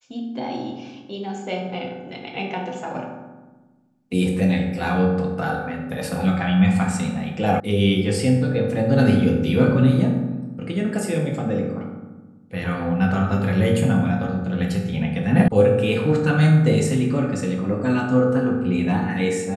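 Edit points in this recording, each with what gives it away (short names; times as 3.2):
7.6 sound cut off
15.48 sound cut off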